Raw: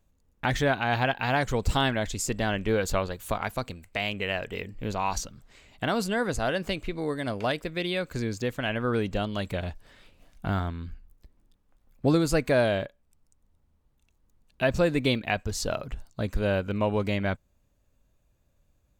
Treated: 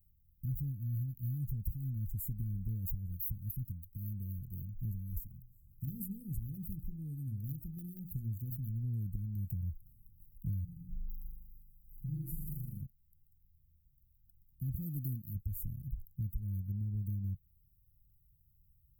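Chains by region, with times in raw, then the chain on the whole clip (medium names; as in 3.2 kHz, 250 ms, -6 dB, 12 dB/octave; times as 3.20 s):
5.22–8.69 s: hum notches 60/120/180/240/300/360/420/480 Hz + hard clipper -21 dBFS
10.64–12.82 s: compression 2.5:1, threshold -41 dBFS + comb 5.9 ms, depth 83% + flutter echo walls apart 6.8 m, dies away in 1.2 s
14.75–15.35 s: high-pass 140 Hz 6 dB/octave + treble shelf 4.4 kHz +7 dB
whole clip: inverse Chebyshev band-stop 710–4400 Hz, stop band 80 dB; tilt EQ +2 dB/octave; compression 6:1, threshold -42 dBFS; trim +8.5 dB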